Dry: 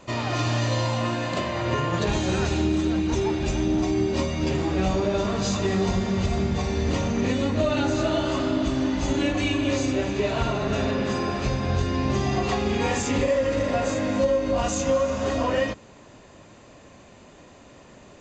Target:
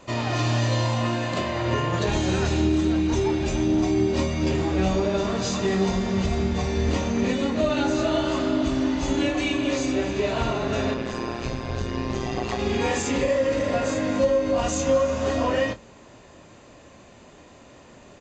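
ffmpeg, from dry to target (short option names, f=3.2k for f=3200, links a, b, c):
-filter_complex "[0:a]bandreject=f=50:t=h:w=6,bandreject=f=100:t=h:w=6,bandreject=f=150:t=h:w=6,bandreject=f=200:t=h:w=6,asettb=1/sr,asplit=3[a][b][c];[a]atrim=end=10.944[d];[b]atrim=start=10.94:end=12.59,asetpts=PTS-STARTPTS,afade=t=in:d=0.004:c=qsin,afade=t=out:st=1.646:d=0.004:c=qsin,tremolo=f=120:d=0.824[e];[c]atrim=start=12.586[f];[d][e]acrossfade=d=0.004:c1=hsin:c2=qsin[g];[g][f]acrossfade=d=0.004:c1=qsin:c2=hsin,asplit=2[h][i];[i]adelay=26,volume=-10.5dB[j];[h][j]amix=inputs=2:normalize=0"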